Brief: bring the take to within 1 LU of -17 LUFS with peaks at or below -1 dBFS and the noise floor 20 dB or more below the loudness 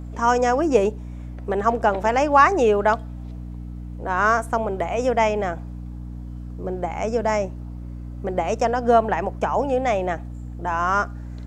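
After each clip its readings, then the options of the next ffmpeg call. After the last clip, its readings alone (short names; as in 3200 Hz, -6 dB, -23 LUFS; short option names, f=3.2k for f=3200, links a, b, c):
hum 60 Hz; harmonics up to 300 Hz; hum level -31 dBFS; loudness -21.5 LUFS; peak -2.0 dBFS; loudness target -17.0 LUFS
-> -af "bandreject=f=60:t=h:w=4,bandreject=f=120:t=h:w=4,bandreject=f=180:t=h:w=4,bandreject=f=240:t=h:w=4,bandreject=f=300:t=h:w=4"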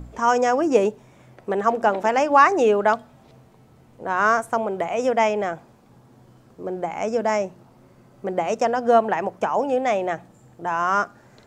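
hum none; loudness -21.5 LUFS; peak -2.5 dBFS; loudness target -17.0 LUFS
-> -af "volume=4.5dB,alimiter=limit=-1dB:level=0:latency=1"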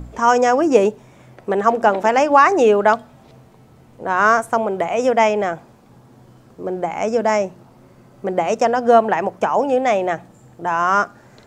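loudness -17.0 LUFS; peak -1.0 dBFS; noise floor -49 dBFS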